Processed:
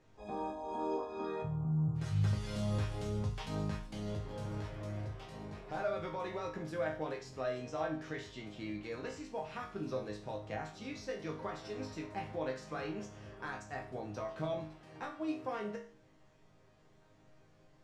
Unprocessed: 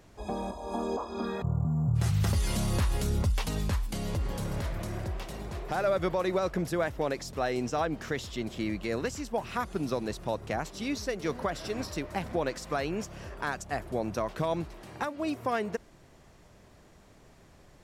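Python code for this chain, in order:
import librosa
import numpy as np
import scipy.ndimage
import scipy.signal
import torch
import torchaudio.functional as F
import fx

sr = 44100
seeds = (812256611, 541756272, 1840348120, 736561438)

y = fx.air_absorb(x, sr, metres=72.0)
y = fx.resonator_bank(y, sr, root=44, chord='major', decay_s=0.44)
y = y * 10.0 ** (7.0 / 20.0)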